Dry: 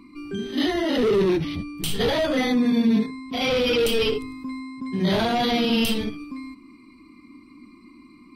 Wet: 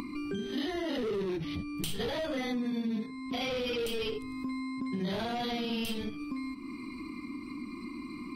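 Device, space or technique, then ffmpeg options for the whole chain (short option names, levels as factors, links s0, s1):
upward and downward compression: -af "acompressor=mode=upward:threshold=0.0251:ratio=2.5,acompressor=threshold=0.0224:ratio=4"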